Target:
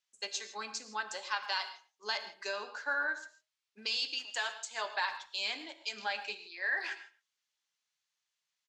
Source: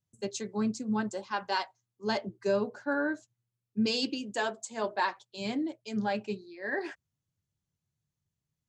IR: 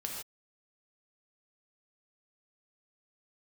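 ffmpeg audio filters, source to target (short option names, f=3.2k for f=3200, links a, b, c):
-filter_complex "[0:a]tiltshelf=f=1.1k:g=-8,alimiter=limit=-20.5dB:level=0:latency=1:release=286,acompressor=threshold=-37dB:ratio=2,asplit=3[a][b][c];[a]afade=t=out:st=4.18:d=0.02[d];[b]aeval=exprs='sgn(val(0))*max(abs(val(0))-0.00335,0)':c=same,afade=t=in:st=4.18:d=0.02,afade=t=out:st=4.65:d=0.02[e];[c]afade=t=in:st=4.65:d=0.02[f];[d][e][f]amix=inputs=3:normalize=0,highpass=750,lowpass=5.1k,asplit=2[g][h];[h]adelay=110,highpass=300,lowpass=3.4k,asoftclip=type=hard:threshold=-32dB,volume=-16dB[i];[g][i]amix=inputs=2:normalize=0,asplit=2[j][k];[1:a]atrim=start_sample=2205[l];[k][l]afir=irnorm=-1:irlink=0,volume=-6.5dB[m];[j][m]amix=inputs=2:normalize=0,volume=2dB"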